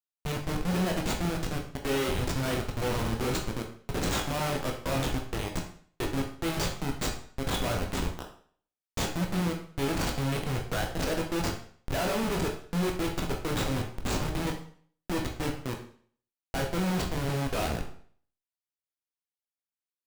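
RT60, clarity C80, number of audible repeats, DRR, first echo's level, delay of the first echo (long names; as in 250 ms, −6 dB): 0.50 s, 11.0 dB, no echo audible, 1.0 dB, no echo audible, no echo audible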